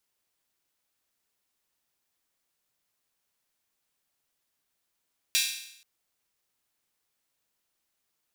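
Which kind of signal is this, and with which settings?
open hi-hat length 0.48 s, high-pass 2900 Hz, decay 0.75 s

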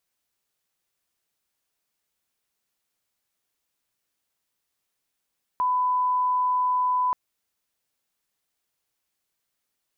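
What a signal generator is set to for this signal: line-up tone -20 dBFS 1.53 s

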